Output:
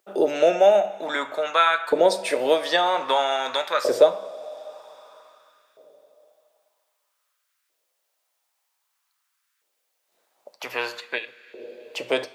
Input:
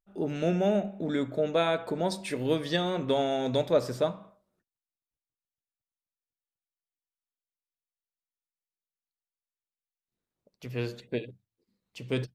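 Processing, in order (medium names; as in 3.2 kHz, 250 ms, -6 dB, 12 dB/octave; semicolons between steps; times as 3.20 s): two-slope reverb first 0.33 s, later 3.4 s, from -18 dB, DRR 12 dB; LFO high-pass saw up 0.52 Hz 440–1500 Hz; three bands compressed up and down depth 40%; trim +8.5 dB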